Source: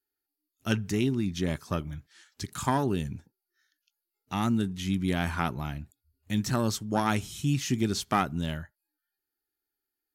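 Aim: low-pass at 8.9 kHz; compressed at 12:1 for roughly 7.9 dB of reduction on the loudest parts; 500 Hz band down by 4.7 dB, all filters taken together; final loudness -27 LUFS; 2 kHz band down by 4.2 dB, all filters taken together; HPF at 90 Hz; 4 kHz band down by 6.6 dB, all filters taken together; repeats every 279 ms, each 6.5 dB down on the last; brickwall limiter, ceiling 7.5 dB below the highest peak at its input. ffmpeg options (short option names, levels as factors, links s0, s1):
-af "highpass=90,lowpass=8900,equalizer=f=500:t=o:g=-6.5,equalizer=f=2000:t=o:g=-3.5,equalizer=f=4000:t=o:g=-7.5,acompressor=threshold=0.0282:ratio=12,alimiter=level_in=1.26:limit=0.0631:level=0:latency=1,volume=0.794,aecho=1:1:279|558|837|1116|1395|1674:0.473|0.222|0.105|0.0491|0.0231|0.0109,volume=3.76"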